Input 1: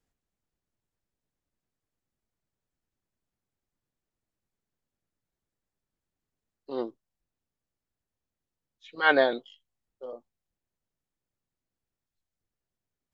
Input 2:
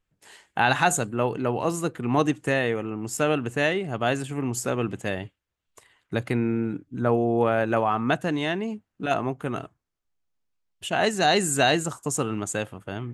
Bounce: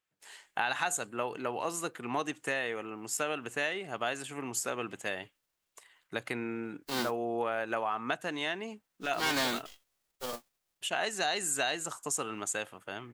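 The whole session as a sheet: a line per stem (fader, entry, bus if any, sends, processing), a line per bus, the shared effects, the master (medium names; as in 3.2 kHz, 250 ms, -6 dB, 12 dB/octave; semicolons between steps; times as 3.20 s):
+2.0 dB, 0.20 s, no send, formants flattened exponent 0.3; saturation -23 dBFS, distortion -7 dB
-1.0 dB, 0.00 s, no send, high-pass 920 Hz 6 dB/octave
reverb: none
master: compression 3:1, threshold -29 dBFS, peak gain reduction 8 dB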